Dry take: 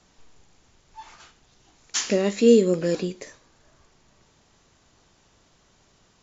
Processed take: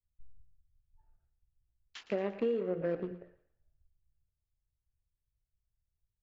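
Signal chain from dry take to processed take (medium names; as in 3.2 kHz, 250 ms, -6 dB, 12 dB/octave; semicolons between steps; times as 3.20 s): local Wiener filter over 41 samples; peaking EQ 240 Hz -12 dB 1.8 oct; de-hum 88.34 Hz, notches 19; compression 12:1, threshold -30 dBFS, peak gain reduction 13.5 dB; distance through air 460 m; thinning echo 116 ms, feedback 65%, high-pass 580 Hz, level -12.5 dB; three bands expanded up and down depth 100%; trim -6 dB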